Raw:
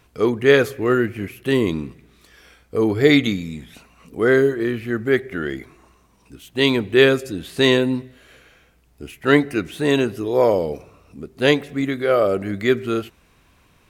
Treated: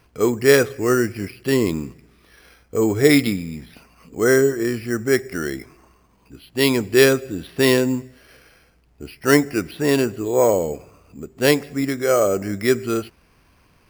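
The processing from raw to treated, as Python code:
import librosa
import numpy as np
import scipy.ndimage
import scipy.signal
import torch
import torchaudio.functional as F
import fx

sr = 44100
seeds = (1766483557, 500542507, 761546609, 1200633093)

y = np.repeat(scipy.signal.resample_poly(x, 1, 6), 6)[:len(x)]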